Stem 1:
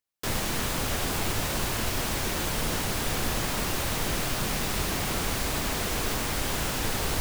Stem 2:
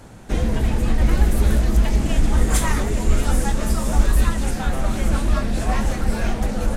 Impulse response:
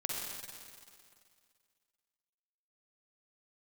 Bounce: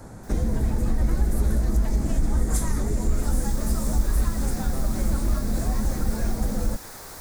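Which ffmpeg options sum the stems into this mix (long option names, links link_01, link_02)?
-filter_complex "[0:a]lowshelf=frequency=440:gain=-10,volume=-7.5dB,afade=type=in:start_time=3.02:duration=0.49:silence=0.237137[link_01];[1:a]acompressor=threshold=-23dB:ratio=2,volume=1dB[link_02];[link_01][link_02]amix=inputs=2:normalize=0,equalizer=frequency=2900:width_type=o:width=0.75:gain=-14.5,acrossover=split=390|3000[link_03][link_04][link_05];[link_04]acompressor=threshold=-37dB:ratio=6[link_06];[link_03][link_06][link_05]amix=inputs=3:normalize=0"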